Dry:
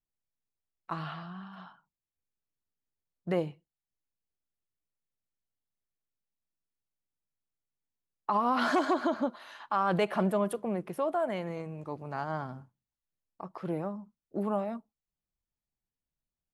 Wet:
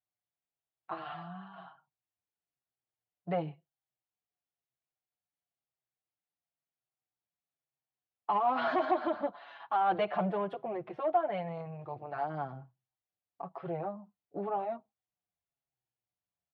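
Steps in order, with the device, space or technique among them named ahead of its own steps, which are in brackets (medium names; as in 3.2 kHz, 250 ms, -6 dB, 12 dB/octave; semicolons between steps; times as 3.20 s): barber-pole flanger into a guitar amplifier (endless flanger 6.1 ms -1 Hz; saturation -23.5 dBFS, distortion -18 dB; cabinet simulation 99–3600 Hz, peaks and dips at 120 Hz +6 dB, 230 Hz -9 dB, 730 Hz +10 dB)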